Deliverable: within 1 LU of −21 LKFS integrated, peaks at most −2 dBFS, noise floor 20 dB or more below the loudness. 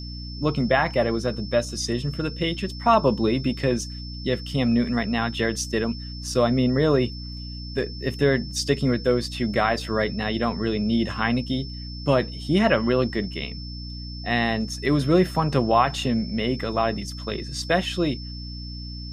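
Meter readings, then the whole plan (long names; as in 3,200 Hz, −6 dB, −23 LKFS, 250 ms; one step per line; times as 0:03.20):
mains hum 60 Hz; hum harmonics up to 300 Hz; level of the hum −33 dBFS; interfering tone 5,300 Hz; level of the tone −39 dBFS; integrated loudness −24.0 LKFS; sample peak −6.0 dBFS; target loudness −21.0 LKFS
→ mains-hum notches 60/120/180/240/300 Hz
notch filter 5,300 Hz, Q 30
level +3 dB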